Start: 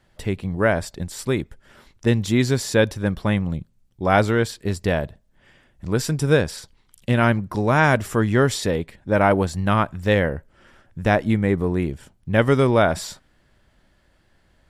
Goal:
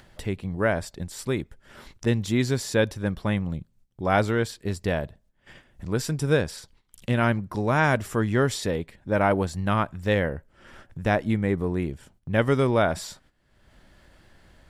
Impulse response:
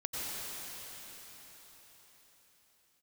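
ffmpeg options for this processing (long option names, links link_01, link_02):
-af "agate=range=-14dB:threshold=-53dB:ratio=16:detection=peak,acompressor=mode=upward:threshold=-29dB:ratio=2.5,volume=-4.5dB"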